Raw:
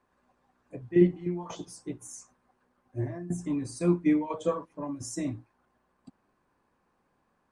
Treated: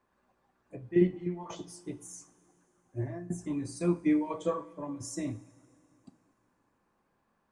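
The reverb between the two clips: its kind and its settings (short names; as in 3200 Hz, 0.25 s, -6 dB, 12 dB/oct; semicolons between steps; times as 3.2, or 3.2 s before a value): two-slope reverb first 0.38 s, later 3 s, from -17 dB, DRR 11.5 dB; gain -2.5 dB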